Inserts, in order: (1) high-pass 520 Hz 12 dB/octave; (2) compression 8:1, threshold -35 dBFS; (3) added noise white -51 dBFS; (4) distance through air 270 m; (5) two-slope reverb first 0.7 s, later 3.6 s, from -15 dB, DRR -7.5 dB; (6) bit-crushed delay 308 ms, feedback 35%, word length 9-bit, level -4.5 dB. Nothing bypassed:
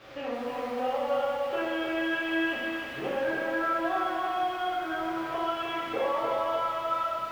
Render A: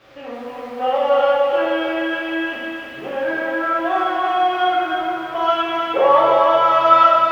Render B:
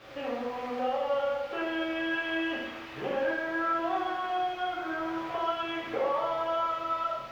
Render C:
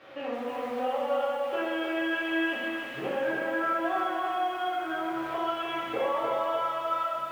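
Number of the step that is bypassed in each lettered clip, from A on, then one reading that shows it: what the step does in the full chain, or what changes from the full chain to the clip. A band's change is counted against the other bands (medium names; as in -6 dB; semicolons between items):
2, crest factor change +4.0 dB; 6, loudness change -1.5 LU; 3, 125 Hz band -2.0 dB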